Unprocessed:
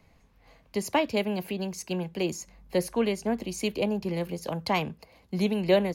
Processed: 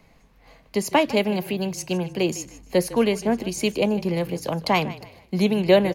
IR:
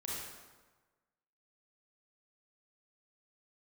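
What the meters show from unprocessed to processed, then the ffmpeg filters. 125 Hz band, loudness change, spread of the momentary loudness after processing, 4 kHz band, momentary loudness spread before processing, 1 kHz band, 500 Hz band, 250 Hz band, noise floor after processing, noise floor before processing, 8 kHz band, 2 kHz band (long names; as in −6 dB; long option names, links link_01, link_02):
+6.0 dB, +6.0 dB, 8 LU, +6.0 dB, 8 LU, +6.0 dB, +6.0 dB, +6.0 dB, −57 dBFS, −61 dBFS, +6.0 dB, +6.0 dB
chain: -filter_complex "[0:a]equalizer=frequency=82:width_type=o:width=0.57:gain=-9,asplit=4[link_01][link_02][link_03][link_04];[link_02]adelay=154,afreqshift=-34,volume=-17dB[link_05];[link_03]adelay=308,afreqshift=-68,volume=-26.9dB[link_06];[link_04]adelay=462,afreqshift=-102,volume=-36.8dB[link_07];[link_01][link_05][link_06][link_07]amix=inputs=4:normalize=0,volume=6dB"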